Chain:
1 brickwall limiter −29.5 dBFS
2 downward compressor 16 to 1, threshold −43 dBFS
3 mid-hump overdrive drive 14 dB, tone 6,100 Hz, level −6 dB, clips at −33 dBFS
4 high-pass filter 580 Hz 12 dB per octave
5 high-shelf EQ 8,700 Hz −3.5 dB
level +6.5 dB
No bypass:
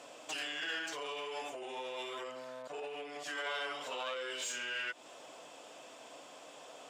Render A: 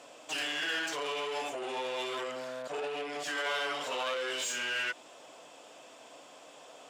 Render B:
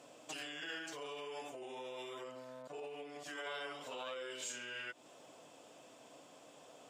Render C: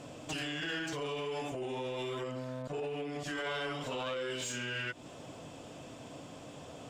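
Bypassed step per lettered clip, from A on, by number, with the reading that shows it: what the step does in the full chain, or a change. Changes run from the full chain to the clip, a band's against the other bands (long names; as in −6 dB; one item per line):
2, average gain reduction 6.5 dB
3, change in crest factor +2.0 dB
4, 125 Hz band +24.5 dB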